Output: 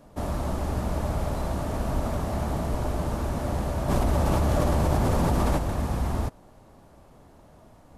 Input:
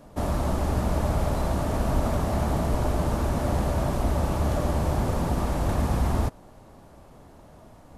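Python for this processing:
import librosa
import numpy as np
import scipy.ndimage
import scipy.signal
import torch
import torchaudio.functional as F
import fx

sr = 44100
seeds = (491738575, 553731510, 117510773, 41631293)

y = fx.env_flatten(x, sr, amount_pct=100, at=(3.88, 5.57), fade=0.02)
y = y * 10.0 ** (-3.0 / 20.0)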